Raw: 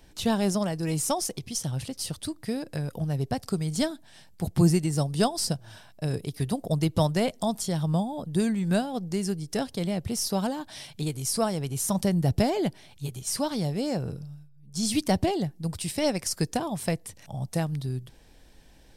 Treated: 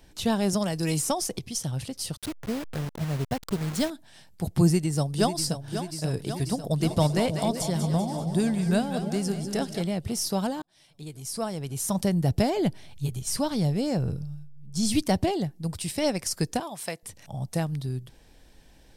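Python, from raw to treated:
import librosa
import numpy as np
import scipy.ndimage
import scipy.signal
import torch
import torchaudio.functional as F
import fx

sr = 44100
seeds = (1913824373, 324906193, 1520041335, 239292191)

y = fx.band_squash(x, sr, depth_pct=70, at=(0.53, 1.39))
y = fx.delta_hold(y, sr, step_db=-32.0, at=(2.17, 3.9))
y = fx.echo_throw(y, sr, start_s=4.64, length_s=1.03, ms=540, feedback_pct=75, wet_db=-9.5)
y = fx.echo_split(y, sr, split_hz=550.0, low_ms=316, high_ms=194, feedback_pct=52, wet_db=-8.0, at=(6.8, 9.81), fade=0.02)
y = fx.low_shelf(y, sr, hz=120.0, db=11.5, at=(12.57, 15.03))
y = fx.highpass(y, sr, hz=760.0, slope=6, at=(16.6, 17.03))
y = fx.edit(y, sr, fx.fade_in_span(start_s=10.62, length_s=1.4), tone=tone)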